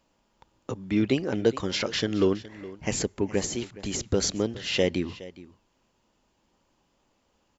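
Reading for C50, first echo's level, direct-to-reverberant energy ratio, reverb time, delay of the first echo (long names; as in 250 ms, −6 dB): no reverb audible, −18.0 dB, no reverb audible, no reverb audible, 417 ms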